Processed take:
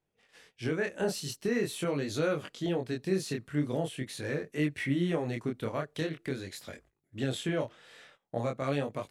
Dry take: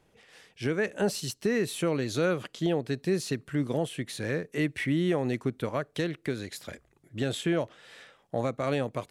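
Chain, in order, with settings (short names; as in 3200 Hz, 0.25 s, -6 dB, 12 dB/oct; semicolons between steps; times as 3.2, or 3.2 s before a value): chorus 0.44 Hz, delay 20 ms, depth 7.4 ms; gate -59 dBFS, range -15 dB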